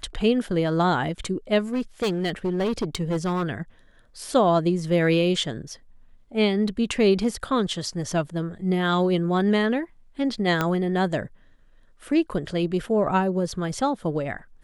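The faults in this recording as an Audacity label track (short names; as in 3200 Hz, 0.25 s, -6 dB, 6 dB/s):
1.730000	3.440000	clipped -20.5 dBFS
10.610000	10.610000	pop -9 dBFS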